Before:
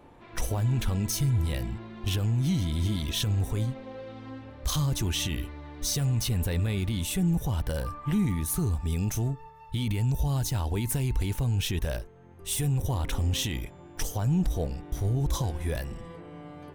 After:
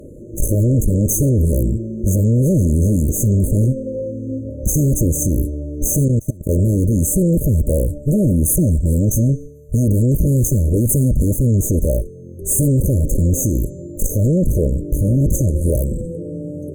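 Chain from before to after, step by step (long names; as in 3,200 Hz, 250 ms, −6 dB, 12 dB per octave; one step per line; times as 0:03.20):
hum removal 281.8 Hz, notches 32
harmonic generator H 4 −9 dB, 5 −10 dB, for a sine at −18 dBFS
0:06.08–0:06.49: output level in coarse steps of 23 dB
brick-wall band-stop 630–6,200 Hz
level +9 dB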